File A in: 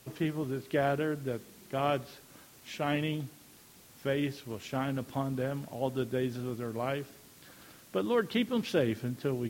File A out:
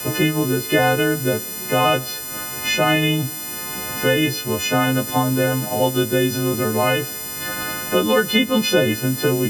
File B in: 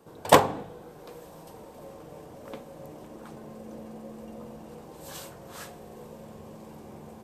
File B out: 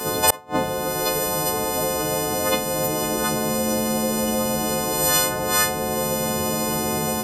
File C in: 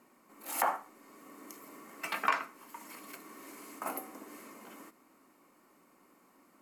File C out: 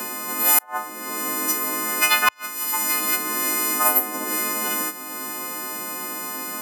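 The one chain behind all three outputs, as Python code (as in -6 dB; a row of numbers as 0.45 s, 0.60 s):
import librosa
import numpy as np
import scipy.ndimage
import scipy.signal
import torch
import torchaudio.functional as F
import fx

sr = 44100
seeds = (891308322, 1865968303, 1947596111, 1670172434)

y = fx.freq_snap(x, sr, grid_st=3)
y = fx.gate_flip(y, sr, shuts_db=-14.0, range_db=-39)
y = fx.band_squash(y, sr, depth_pct=70)
y = y * 10.0 ** (-3 / 20.0) / np.max(np.abs(y))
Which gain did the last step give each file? +13.0 dB, +19.0 dB, +17.5 dB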